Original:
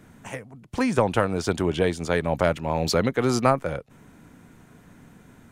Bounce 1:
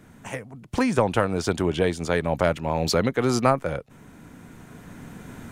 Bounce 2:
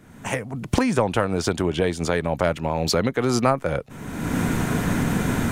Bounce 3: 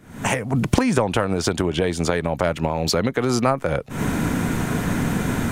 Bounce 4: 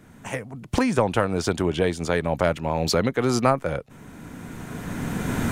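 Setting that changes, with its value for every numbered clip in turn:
recorder AGC, rising by: 5.7, 35, 86, 14 dB/s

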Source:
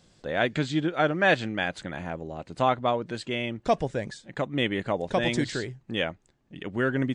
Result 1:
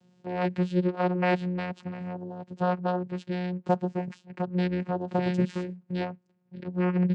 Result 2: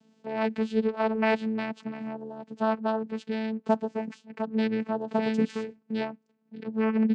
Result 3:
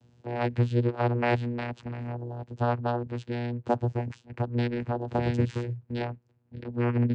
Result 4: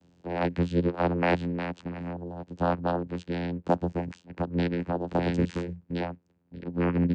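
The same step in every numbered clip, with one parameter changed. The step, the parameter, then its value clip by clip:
vocoder, frequency: 180, 220, 120, 87 Hz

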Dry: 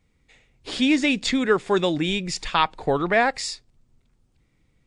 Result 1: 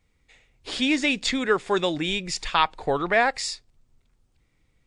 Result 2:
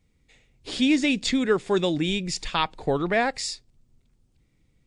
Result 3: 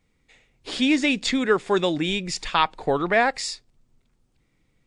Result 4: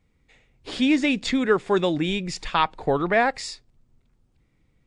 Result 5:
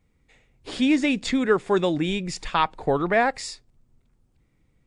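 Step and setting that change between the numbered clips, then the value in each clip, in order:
bell, frequency: 190, 1200, 66, 16000, 4300 Hz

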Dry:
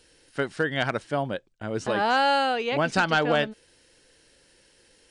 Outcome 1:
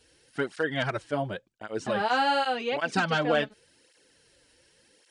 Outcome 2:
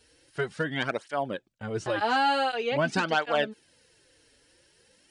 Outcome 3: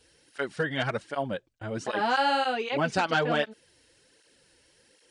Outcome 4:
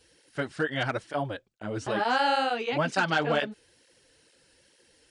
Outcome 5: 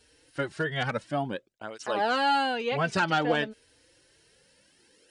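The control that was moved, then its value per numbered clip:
tape flanging out of phase, nulls at: 0.89, 0.46, 1.3, 2.2, 0.28 Hz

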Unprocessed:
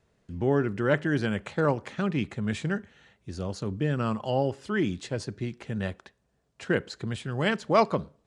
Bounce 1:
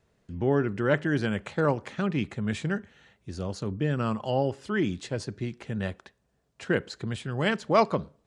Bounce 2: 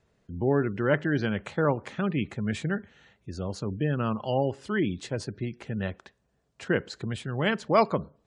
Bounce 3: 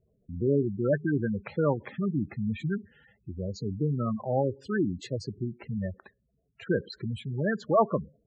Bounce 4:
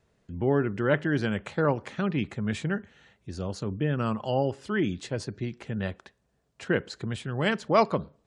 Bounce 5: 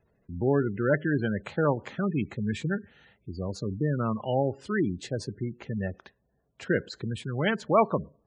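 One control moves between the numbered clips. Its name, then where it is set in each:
spectral gate, under each frame's peak: -60, -35, -10, -45, -20 dB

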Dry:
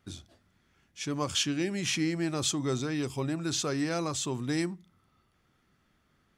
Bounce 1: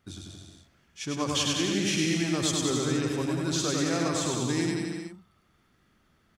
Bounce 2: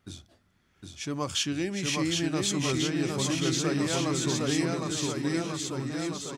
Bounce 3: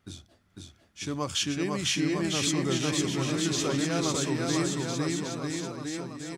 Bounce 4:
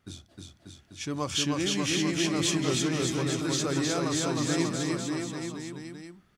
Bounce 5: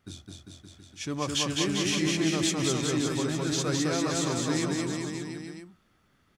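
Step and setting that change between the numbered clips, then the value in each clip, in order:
bouncing-ball echo, first gap: 0.1, 0.76, 0.5, 0.31, 0.21 s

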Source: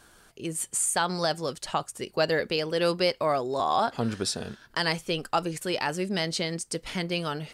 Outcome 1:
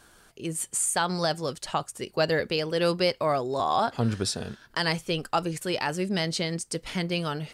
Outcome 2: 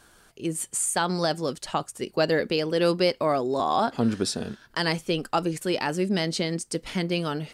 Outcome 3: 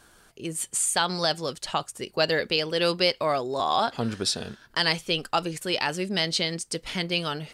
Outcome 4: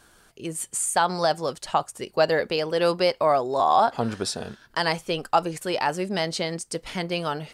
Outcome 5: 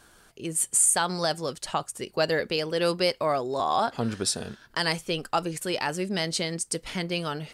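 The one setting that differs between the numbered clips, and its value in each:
dynamic EQ, frequency: 100, 260, 3500, 800, 9700 Hz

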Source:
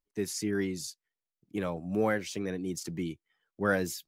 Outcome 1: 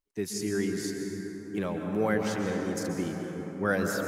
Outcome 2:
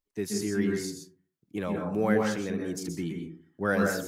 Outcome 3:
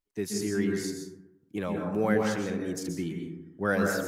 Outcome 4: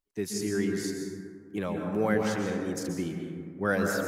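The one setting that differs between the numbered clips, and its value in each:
plate-style reverb, RT60: 5.2, 0.5, 1, 2.2 s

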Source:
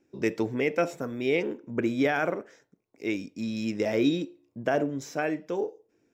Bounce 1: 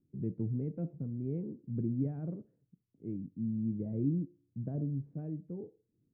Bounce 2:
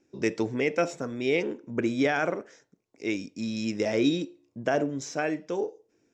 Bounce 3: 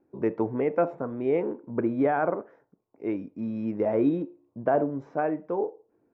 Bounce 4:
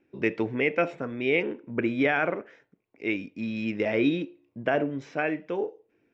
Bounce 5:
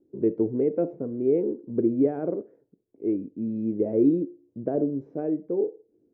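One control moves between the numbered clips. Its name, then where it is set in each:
synth low-pass, frequency: 150, 6700, 1000, 2600, 400 Hz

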